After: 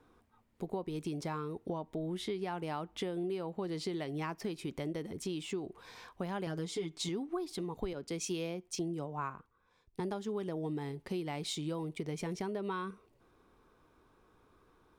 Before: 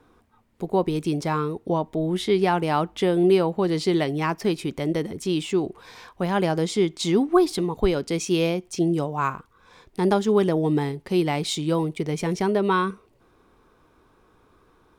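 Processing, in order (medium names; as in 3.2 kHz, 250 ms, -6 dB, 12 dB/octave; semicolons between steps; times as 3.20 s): 6.46–7.09 s: comb 6.9 ms, depth 91%; compression 6:1, threshold -27 dBFS, peak gain reduction 14 dB; 7.93–10.00 s: three bands expanded up and down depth 70%; trim -7.5 dB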